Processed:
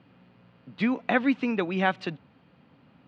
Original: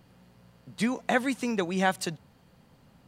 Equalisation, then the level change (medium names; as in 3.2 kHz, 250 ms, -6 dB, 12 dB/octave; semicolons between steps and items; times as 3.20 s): cabinet simulation 100–3700 Hz, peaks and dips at 280 Hz +7 dB, 1.3 kHz +3 dB, 2.5 kHz +5 dB; 0.0 dB